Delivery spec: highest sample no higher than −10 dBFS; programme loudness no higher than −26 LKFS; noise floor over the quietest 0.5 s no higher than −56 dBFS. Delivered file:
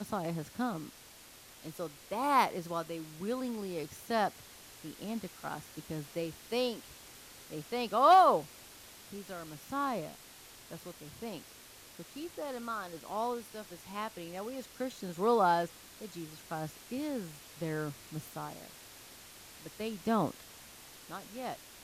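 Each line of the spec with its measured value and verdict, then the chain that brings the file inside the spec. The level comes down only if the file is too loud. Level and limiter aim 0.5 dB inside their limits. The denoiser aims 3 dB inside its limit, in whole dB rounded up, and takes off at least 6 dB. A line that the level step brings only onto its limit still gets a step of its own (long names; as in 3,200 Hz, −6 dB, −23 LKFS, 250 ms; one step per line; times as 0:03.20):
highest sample −14.5 dBFS: in spec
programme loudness −34.0 LKFS: in spec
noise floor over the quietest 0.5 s −55 dBFS: out of spec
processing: broadband denoise 6 dB, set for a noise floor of −55 dBFS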